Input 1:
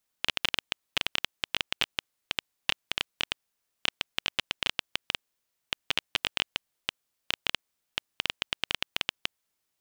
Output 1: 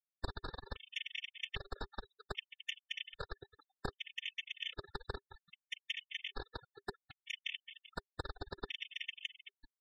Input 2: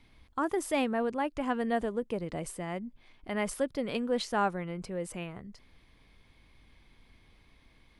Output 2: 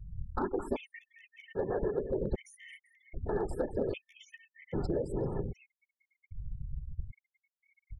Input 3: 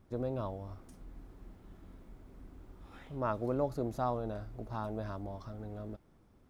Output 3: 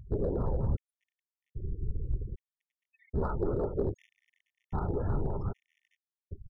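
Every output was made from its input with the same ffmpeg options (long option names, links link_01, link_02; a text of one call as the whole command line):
ffmpeg -i in.wav -filter_complex "[0:a]aecho=1:1:2.3:0.66,acompressor=threshold=-38dB:ratio=8,asplit=2[link_01][link_02];[link_02]aecho=0:1:41|218|388:0.126|0.299|0.224[link_03];[link_01][link_03]amix=inputs=2:normalize=0,afftfilt=real='hypot(re,im)*cos(2*PI*random(0))':imag='hypot(re,im)*sin(2*PI*random(1))':win_size=512:overlap=0.75,afftfilt=real='re*gte(hypot(re,im),0.00224)':imag='im*gte(hypot(re,im),0.00224)':win_size=1024:overlap=0.75,aemphasis=mode=reproduction:type=bsi,asplit=2[link_04][link_05];[link_05]aeval=exprs='0.0188*(abs(mod(val(0)/0.0188+3,4)-2)-1)':channel_layout=same,volume=-4.5dB[link_06];[link_04][link_06]amix=inputs=2:normalize=0,equalizer=frequency=400:width=7.4:gain=7.5,afftfilt=real='re*gt(sin(2*PI*0.63*pts/sr)*(1-2*mod(floor(b*sr/1024/1800),2)),0)':imag='im*gt(sin(2*PI*0.63*pts/sr)*(1-2*mod(floor(b*sr/1024/1800),2)),0)':win_size=1024:overlap=0.75,volume=6.5dB" out.wav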